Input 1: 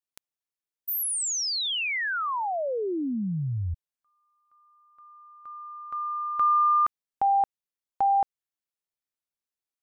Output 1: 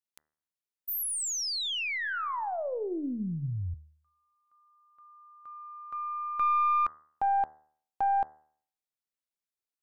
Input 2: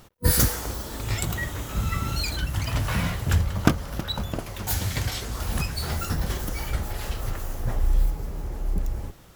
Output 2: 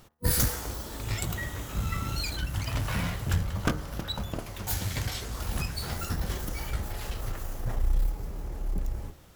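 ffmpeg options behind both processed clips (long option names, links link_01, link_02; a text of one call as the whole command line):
ffmpeg -i in.wav -af "aeval=exprs='(tanh(3.98*val(0)+0.4)-tanh(0.4))/3.98':channel_layout=same,bandreject=frequency=76.52:width_type=h:width=4,bandreject=frequency=153.04:width_type=h:width=4,bandreject=frequency=229.56:width_type=h:width=4,bandreject=frequency=306.08:width_type=h:width=4,bandreject=frequency=382.6:width_type=h:width=4,bandreject=frequency=459.12:width_type=h:width=4,bandreject=frequency=535.64:width_type=h:width=4,bandreject=frequency=612.16:width_type=h:width=4,bandreject=frequency=688.68:width_type=h:width=4,bandreject=frequency=765.2:width_type=h:width=4,bandreject=frequency=841.72:width_type=h:width=4,bandreject=frequency=918.24:width_type=h:width=4,bandreject=frequency=994.76:width_type=h:width=4,bandreject=frequency=1071.28:width_type=h:width=4,bandreject=frequency=1147.8:width_type=h:width=4,bandreject=frequency=1224.32:width_type=h:width=4,bandreject=frequency=1300.84:width_type=h:width=4,bandreject=frequency=1377.36:width_type=h:width=4,bandreject=frequency=1453.88:width_type=h:width=4,bandreject=frequency=1530.4:width_type=h:width=4,bandreject=frequency=1606.92:width_type=h:width=4,bandreject=frequency=1683.44:width_type=h:width=4,bandreject=frequency=1759.96:width_type=h:width=4,bandreject=frequency=1836.48:width_type=h:width=4,bandreject=frequency=1913:width_type=h:width=4,bandreject=frequency=1989.52:width_type=h:width=4,volume=-2.5dB" out.wav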